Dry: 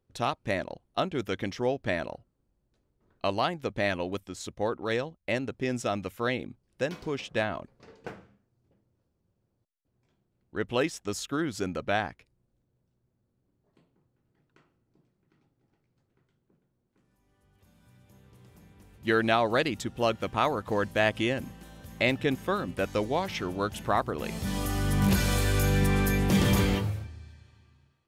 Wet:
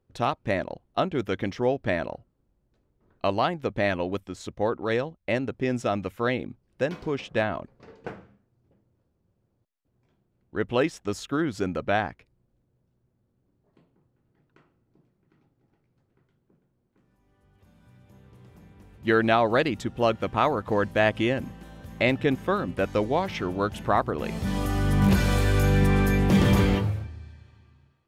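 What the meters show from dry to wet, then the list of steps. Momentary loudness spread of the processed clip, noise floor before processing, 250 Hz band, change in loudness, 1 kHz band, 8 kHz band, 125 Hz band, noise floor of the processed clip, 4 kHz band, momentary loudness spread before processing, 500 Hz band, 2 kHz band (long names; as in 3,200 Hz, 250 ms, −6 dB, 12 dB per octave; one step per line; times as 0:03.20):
13 LU, −77 dBFS, +4.0 dB, +3.5 dB, +3.5 dB, −4.0 dB, +4.0 dB, −73 dBFS, −0.5 dB, 12 LU, +4.0 dB, +2.0 dB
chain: high-shelf EQ 3,800 Hz −10 dB
level +4 dB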